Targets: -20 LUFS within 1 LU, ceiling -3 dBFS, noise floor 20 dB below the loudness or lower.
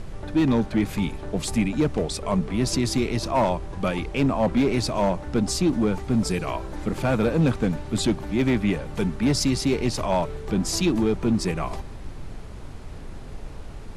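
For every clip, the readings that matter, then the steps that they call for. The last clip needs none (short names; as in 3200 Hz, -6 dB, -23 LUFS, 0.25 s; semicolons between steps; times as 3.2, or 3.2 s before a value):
clipped 1.2%; flat tops at -14.5 dBFS; noise floor -37 dBFS; noise floor target -44 dBFS; loudness -24.0 LUFS; peak -14.5 dBFS; loudness target -20.0 LUFS
-> clip repair -14.5 dBFS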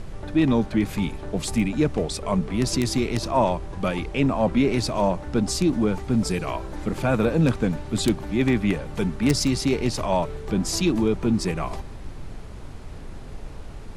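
clipped 0.0%; noise floor -37 dBFS; noise floor target -44 dBFS
-> noise print and reduce 7 dB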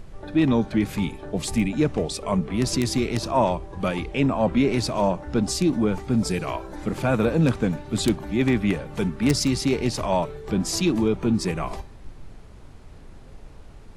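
noise floor -44 dBFS; loudness -24.0 LUFS; peak -5.5 dBFS; loudness target -20.0 LUFS
-> gain +4 dB; limiter -3 dBFS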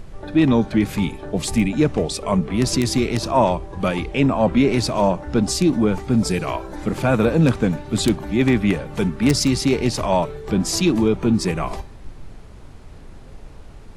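loudness -20.0 LUFS; peak -3.0 dBFS; noise floor -40 dBFS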